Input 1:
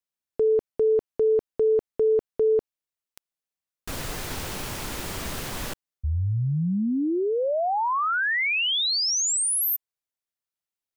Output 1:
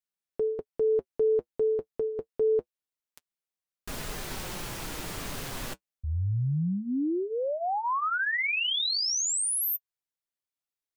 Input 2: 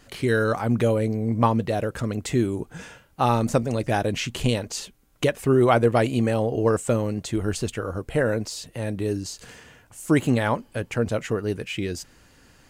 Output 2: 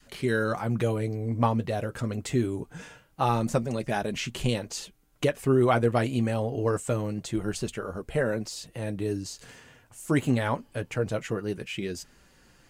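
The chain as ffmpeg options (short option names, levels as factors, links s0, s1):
-af "flanger=delay=4.7:depth=3.5:regen=-47:speed=0.25:shape=triangular,adynamicequalizer=threshold=0.0224:dfrequency=470:dqfactor=1.1:tfrequency=470:tqfactor=1.1:attack=5:release=100:ratio=0.375:range=1.5:mode=cutabove:tftype=bell"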